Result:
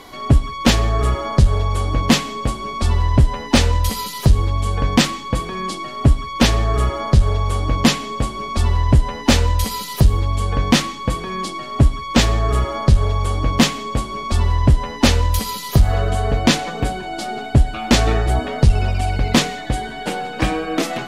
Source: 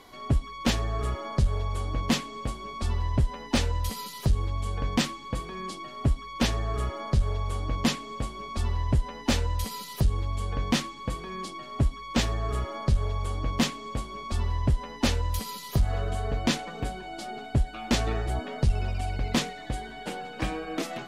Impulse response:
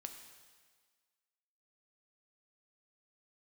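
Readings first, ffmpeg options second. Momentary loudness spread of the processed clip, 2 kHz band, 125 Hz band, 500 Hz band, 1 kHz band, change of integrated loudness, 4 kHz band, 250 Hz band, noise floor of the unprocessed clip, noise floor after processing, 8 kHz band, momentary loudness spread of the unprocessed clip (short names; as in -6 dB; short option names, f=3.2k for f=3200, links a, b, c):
8 LU, +11.0 dB, +11.5 dB, +11.0 dB, +11.5 dB, +11.0 dB, +11.0 dB, +11.0 dB, -42 dBFS, -31 dBFS, +11.5 dB, 8 LU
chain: -filter_complex "[0:a]asplit=2[a][b];[1:a]atrim=start_sample=2205,afade=t=out:st=0.24:d=0.01,atrim=end_sample=11025[c];[b][c]afir=irnorm=-1:irlink=0,volume=-2dB[d];[a][d]amix=inputs=2:normalize=0,volume=8dB"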